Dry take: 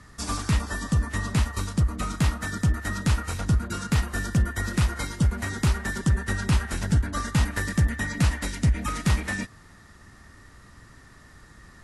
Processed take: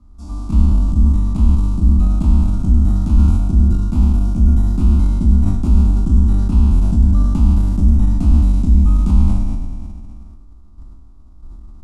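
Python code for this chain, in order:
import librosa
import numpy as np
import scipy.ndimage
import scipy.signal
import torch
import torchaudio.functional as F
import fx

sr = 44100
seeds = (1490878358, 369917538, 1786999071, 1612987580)

p1 = fx.spec_trails(x, sr, decay_s=2.13)
p2 = fx.high_shelf(p1, sr, hz=7800.0, db=6.0)
p3 = fx.fixed_phaser(p2, sr, hz=480.0, stages=6)
p4 = fx.level_steps(p3, sr, step_db=24)
p5 = p3 + F.gain(torch.from_numpy(p4), 3.0).numpy()
p6 = fx.tilt_eq(p5, sr, slope=-4.5)
p7 = fx.sustainer(p6, sr, db_per_s=28.0)
y = F.gain(torch.from_numpy(p7), -12.5).numpy()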